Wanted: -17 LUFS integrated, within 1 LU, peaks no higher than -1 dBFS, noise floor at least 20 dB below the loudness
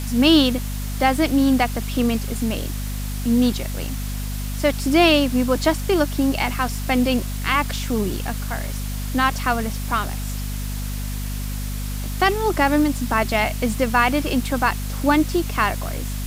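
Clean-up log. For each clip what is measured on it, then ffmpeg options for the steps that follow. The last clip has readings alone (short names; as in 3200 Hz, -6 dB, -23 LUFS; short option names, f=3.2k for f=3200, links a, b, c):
hum 50 Hz; harmonics up to 250 Hz; hum level -24 dBFS; noise floor -27 dBFS; noise floor target -42 dBFS; loudness -21.5 LUFS; peak -2.5 dBFS; loudness target -17.0 LUFS
-> -af "bandreject=f=50:t=h:w=6,bandreject=f=100:t=h:w=6,bandreject=f=150:t=h:w=6,bandreject=f=200:t=h:w=6,bandreject=f=250:t=h:w=6"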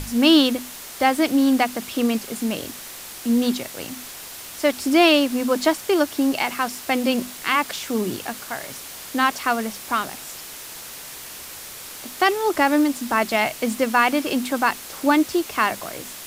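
hum none; noise floor -38 dBFS; noise floor target -41 dBFS
-> -af "afftdn=nr=6:nf=-38"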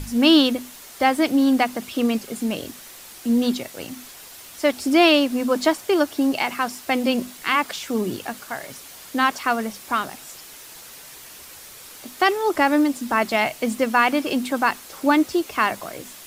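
noise floor -42 dBFS; loudness -21.0 LUFS; peak -3.5 dBFS; loudness target -17.0 LUFS
-> -af "volume=4dB,alimiter=limit=-1dB:level=0:latency=1"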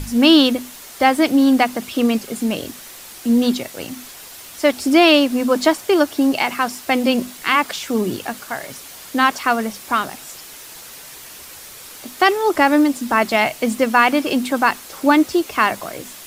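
loudness -17.5 LUFS; peak -1.0 dBFS; noise floor -38 dBFS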